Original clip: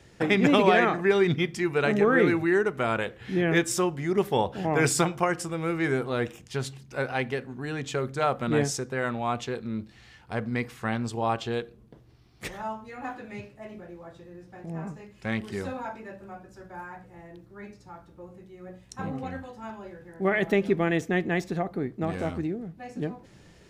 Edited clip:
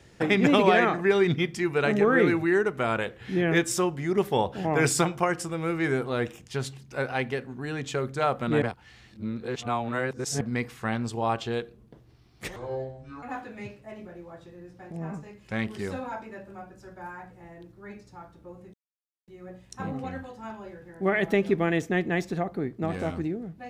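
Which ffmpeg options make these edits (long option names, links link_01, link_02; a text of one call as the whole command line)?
ffmpeg -i in.wav -filter_complex "[0:a]asplit=6[link_01][link_02][link_03][link_04][link_05][link_06];[link_01]atrim=end=8.622[link_07];[link_02]atrim=start=8.618:end=10.412,asetpts=PTS-STARTPTS,areverse[link_08];[link_03]atrim=start=10.408:end=12.564[link_09];[link_04]atrim=start=12.56:end=12.96,asetpts=PTS-STARTPTS,asetrate=26460,aresample=44100[link_10];[link_05]atrim=start=12.956:end=18.47,asetpts=PTS-STARTPTS,afade=type=out:start_time=5.51:duration=0.004:curve=hsin,apad=pad_dur=0.54[link_11];[link_06]atrim=start=18.47,asetpts=PTS-STARTPTS,afade=type=in:duration=0.004:curve=hsin[link_12];[link_07][link_08]acrossfade=duration=0.004:curve1=hsin:curve2=hsin[link_13];[link_13][link_09]acrossfade=duration=0.004:curve1=hsin:curve2=hsin[link_14];[link_14][link_10]acrossfade=duration=0.004:curve1=hsin:curve2=hsin[link_15];[link_11][link_12]concat=n=2:v=0:a=1[link_16];[link_15][link_16]acrossfade=duration=0.004:curve1=hsin:curve2=hsin" out.wav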